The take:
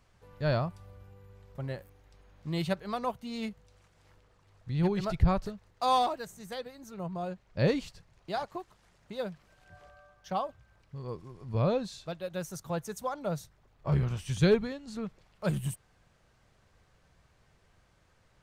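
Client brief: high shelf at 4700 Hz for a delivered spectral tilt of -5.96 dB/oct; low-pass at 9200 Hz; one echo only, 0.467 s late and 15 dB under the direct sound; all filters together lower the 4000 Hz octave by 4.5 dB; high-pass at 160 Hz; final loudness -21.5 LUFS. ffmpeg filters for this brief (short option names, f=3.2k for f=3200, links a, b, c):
-af "highpass=160,lowpass=9.2k,equalizer=f=4k:t=o:g=-7,highshelf=f=4.7k:g=4,aecho=1:1:467:0.178,volume=13dB"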